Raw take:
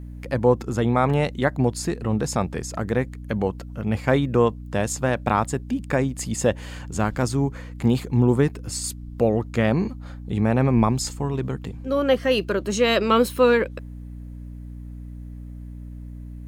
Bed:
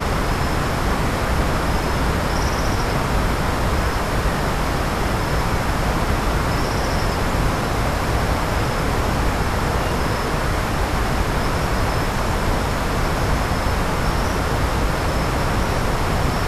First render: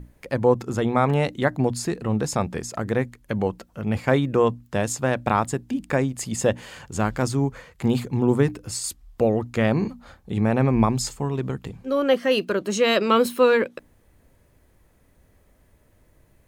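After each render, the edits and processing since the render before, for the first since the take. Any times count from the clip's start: notches 60/120/180/240/300 Hz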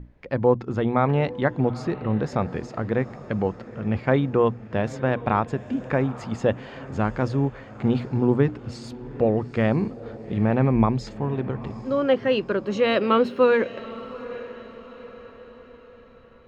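air absorption 240 m; diffused feedback echo 0.847 s, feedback 46%, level -16 dB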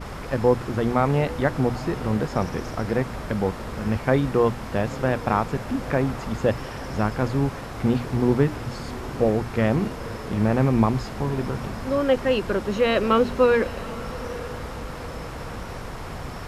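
add bed -14.5 dB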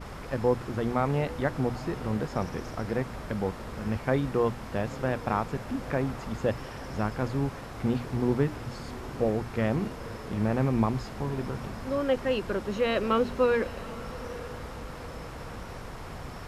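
gain -6 dB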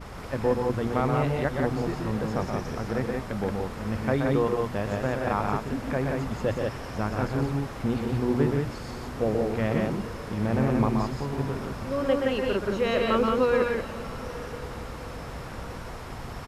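loudspeakers at several distances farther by 43 m -5 dB, 60 m -3 dB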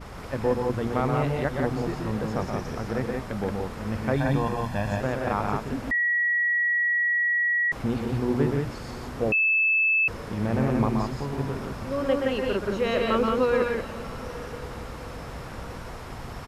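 4.16–5.01 comb 1.2 ms; 5.91–7.72 bleep 1920 Hz -20.5 dBFS; 9.32–10.08 bleep 2620 Hz -18.5 dBFS

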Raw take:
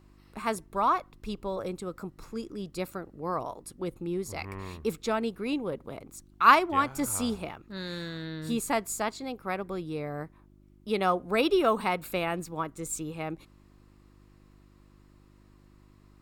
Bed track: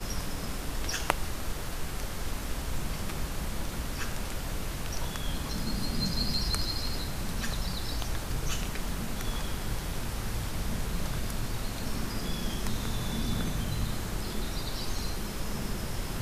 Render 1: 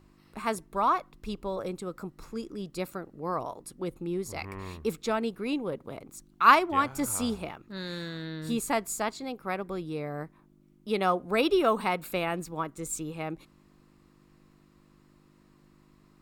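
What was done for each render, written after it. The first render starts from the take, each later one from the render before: de-hum 50 Hz, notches 2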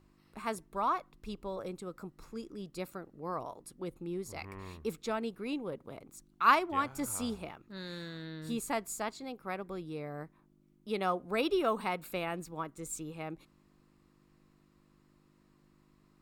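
gain -6 dB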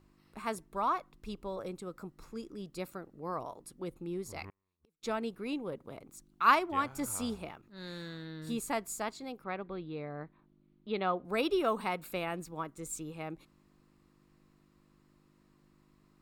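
4.49–5.03 flipped gate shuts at -37 dBFS, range -41 dB; 7.61–8.47 transient shaper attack -11 dB, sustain +3 dB; 9.44–11.25 steep low-pass 4500 Hz 96 dB/oct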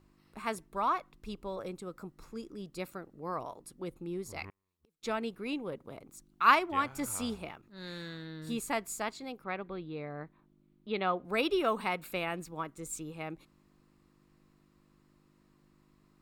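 dynamic EQ 2400 Hz, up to +4 dB, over -51 dBFS, Q 1

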